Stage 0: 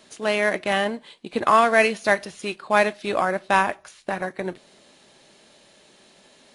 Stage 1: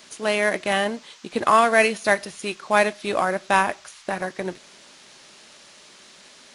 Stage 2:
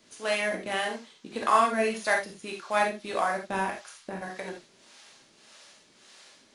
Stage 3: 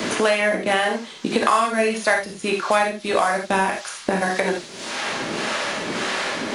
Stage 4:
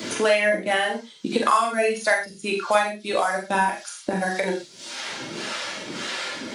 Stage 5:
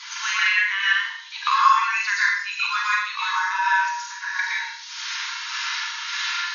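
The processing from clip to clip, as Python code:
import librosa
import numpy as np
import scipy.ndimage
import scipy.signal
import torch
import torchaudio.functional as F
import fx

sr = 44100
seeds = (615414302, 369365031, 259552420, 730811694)

y1 = fx.high_shelf(x, sr, hz=9300.0, db=10.0)
y1 = fx.dmg_noise_band(y1, sr, seeds[0], low_hz=880.0, high_hz=6700.0, level_db=-51.0)
y2 = fx.harmonic_tremolo(y1, sr, hz=1.7, depth_pct=70, crossover_hz=460.0)
y2 = fx.rev_gated(y2, sr, seeds[1], gate_ms=100, shape='flat', drr_db=1.0)
y2 = F.gain(torch.from_numpy(y2), -6.0).numpy()
y3 = fx.band_squash(y2, sr, depth_pct=100)
y3 = F.gain(torch.from_numpy(y3), 9.0).numpy()
y4 = fx.bin_expand(y3, sr, power=1.5)
y4 = fx.low_shelf(y4, sr, hz=99.0, db=-8.5)
y4 = fx.doubler(y4, sr, ms=43.0, db=-5.5)
y5 = fx.brickwall_bandpass(y4, sr, low_hz=890.0, high_hz=6800.0)
y5 = fx.rev_plate(y5, sr, seeds[2], rt60_s=0.63, hf_ratio=0.95, predelay_ms=105, drr_db=-5.5)
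y5 = F.gain(torch.from_numpy(y5), -2.0).numpy()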